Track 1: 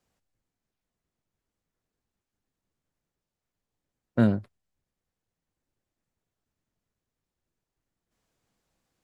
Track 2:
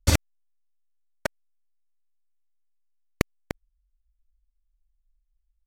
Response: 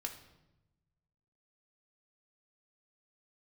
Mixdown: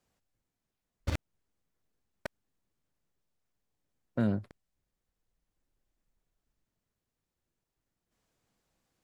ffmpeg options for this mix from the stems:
-filter_complex "[0:a]volume=-1dB,asplit=2[a][b];[1:a]adynamicsmooth=sensitivity=3:basefreq=790,adelay=1000,volume=-11dB[c];[b]apad=whole_len=294017[d];[c][d]sidechaincompress=threshold=-32dB:ratio=8:attack=6.1:release=1030[e];[a][e]amix=inputs=2:normalize=0,alimiter=limit=-19dB:level=0:latency=1:release=181"

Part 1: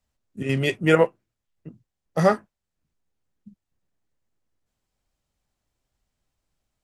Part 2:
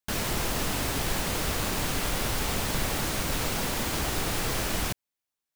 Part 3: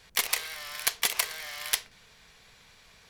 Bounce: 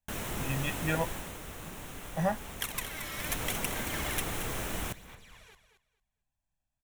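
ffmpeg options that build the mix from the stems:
-filter_complex "[0:a]aecho=1:1:1.2:0.83,volume=-12.5dB[a];[1:a]volume=1.5dB,afade=t=out:st=0.94:d=0.45:silence=0.421697,afade=t=in:st=3.09:d=0.32:silence=0.375837,asplit=2[b][c];[c]volume=-19.5dB[d];[2:a]acompressor=threshold=-36dB:ratio=3,aphaser=in_gain=1:out_gain=1:delay=3.7:decay=0.7:speed=0.75:type=sinusoidal,adelay=2450,volume=-1dB,asplit=2[e][f];[f]volume=-10dB[g];[d][g]amix=inputs=2:normalize=0,aecho=0:1:225|450|675:1|0.19|0.0361[h];[a][b][e][h]amix=inputs=4:normalize=0,equalizer=f=4.7k:t=o:w=0.43:g=-11"

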